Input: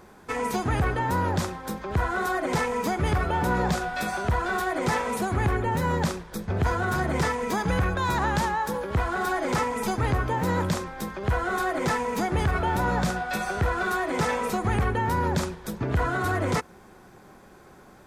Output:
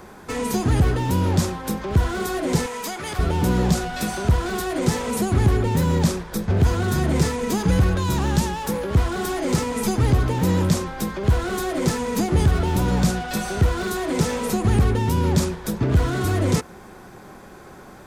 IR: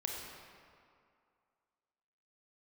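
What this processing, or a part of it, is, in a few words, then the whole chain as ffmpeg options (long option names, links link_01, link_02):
one-band saturation: -filter_complex "[0:a]asettb=1/sr,asplit=3[link_01][link_02][link_03];[link_01]atrim=end=2.664[link_04];[link_02]atrim=start=2.66:end=3.19,asetpts=PTS-STARTPTS,afade=type=in:duration=0.004:curve=qsin,afade=type=out:start_time=0.526:duration=0.004:curve=qsin,highpass=frequency=1300:poles=1[link_05];[link_03]atrim=start=3.186[link_06];[link_04][link_05]acrossfade=duration=0.004:curve1=hsin:curve2=qsin[link_07];[link_07][link_06]acrossfade=duration=0.004:curve1=qsin:curve2=hsin,acrossover=split=420|4100[link_08][link_09][link_10];[link_09]asoftclip=type=tanh:threshold=-39dB[link_11];[link_08][link_11][link_10]amix=inputs=3:normalize=0,volume=8dB"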